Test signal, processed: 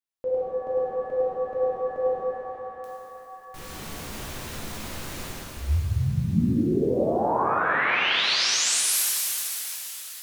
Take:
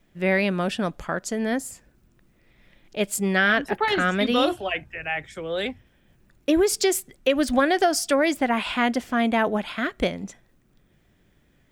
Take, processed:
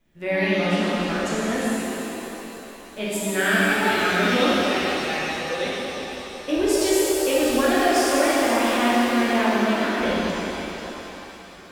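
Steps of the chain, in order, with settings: feedback echo behind a high-pass 595 ms, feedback 56%, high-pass 1.5 kHz, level -18 dB; pitch-shifted reverb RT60 3.5 s, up +7 st, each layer -8 dB, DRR -8.5 dB; trim -7.5 dB

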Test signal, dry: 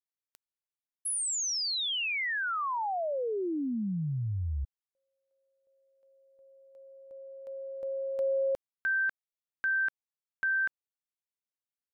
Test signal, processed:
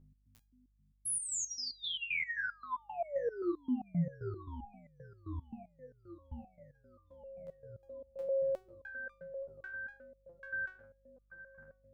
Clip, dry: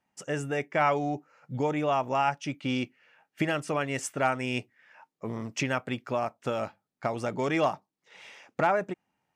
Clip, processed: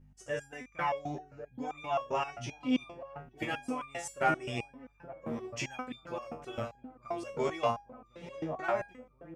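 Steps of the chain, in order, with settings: feedback echo behind a low-pass 872 ms, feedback 58%, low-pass 820 Hz, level -8 dB; hum 50 Hz, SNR 21 dB; resonator arpeggio 7.6 Hz 79–1200 Hz; trim +6 dB

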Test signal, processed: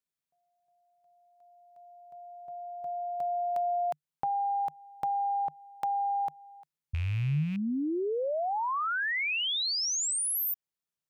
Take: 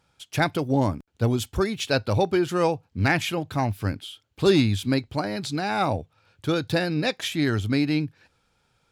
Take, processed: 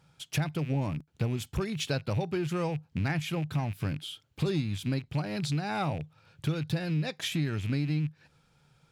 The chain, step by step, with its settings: rattle on loud lows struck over -33 dBFS, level -27 dBFS; peaking EQ 150 Hz +14 dB 0.43 oct; compression 4:1, threshold -29 dBFS

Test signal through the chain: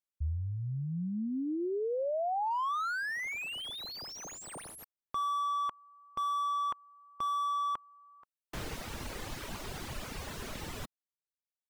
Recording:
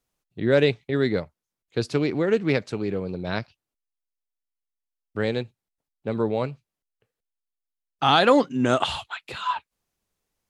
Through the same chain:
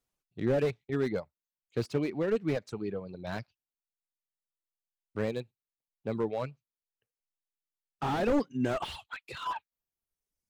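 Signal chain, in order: reverb removal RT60 1.3 s; slew-rate limiter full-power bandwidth 60 Hz; trim -5.5 dB

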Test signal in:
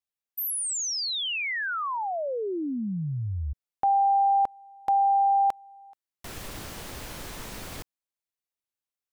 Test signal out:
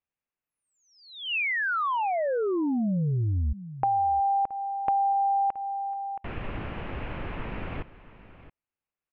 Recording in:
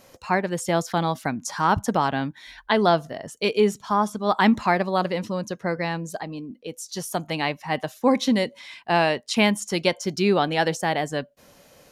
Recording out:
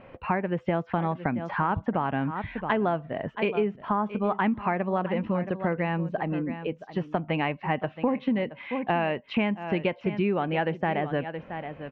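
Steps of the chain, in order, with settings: Chebyshev low-pass 2.7 kHz, order 4; bass shelf 330 Hz +5 dB; on a send: delay 673 ms -16 dB; on the sum: compression 5:1, threshold -27 dBFS; trim +3.5 dB

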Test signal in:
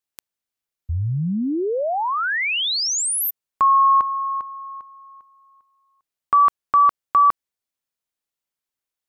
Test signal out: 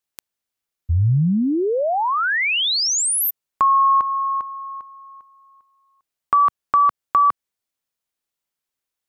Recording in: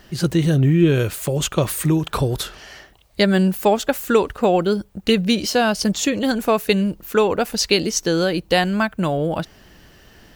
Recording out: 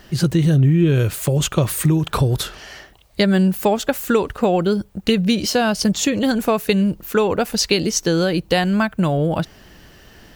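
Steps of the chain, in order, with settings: dynamic bell 120 Hz, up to +6 dB, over -32 dBFS, Q 1; compression 2:1, threshold -18 dBFS; trim +2.5 dB

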